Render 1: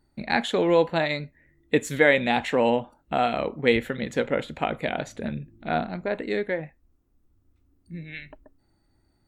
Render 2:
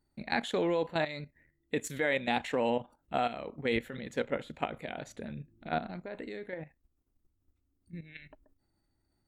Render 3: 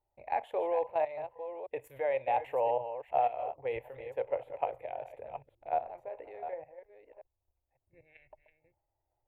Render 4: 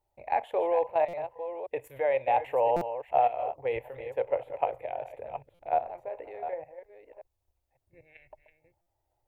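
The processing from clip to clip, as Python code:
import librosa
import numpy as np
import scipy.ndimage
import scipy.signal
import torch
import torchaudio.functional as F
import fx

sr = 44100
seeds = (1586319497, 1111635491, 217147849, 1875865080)

y1 = fx.level_steps(x, sr, step_db=12)
y1 = fx.high_shelf(y1, sr, hz=6200.0, db=4.0)
y1 = F.gain(torch.from_numpy(y1), -4.5).numpy()
y2 = fx.reverse_delay(y1, sr, ms=555, wet_db=-10.0)
y2 = fx.curve_eq(y2, sr, hz=(130.0, 180.0, 530.0, 890.0, 1400.0, 2600.0, 4000.0, 6700.0, 13000.0), db=(0, -27, 11, 13, -7, 1, -20, -21, 2))
y2 = F.gain(torch.from_numpy(y2), -9.0).numpy()
y3 = fx.buffer_glitch(y2, sr, at_s=(1.08, 2.76, 5.54, 8.81), block=256, repeats=8)
y3 = F.gain(torch.from_numpy(y3), 4.5).numpy()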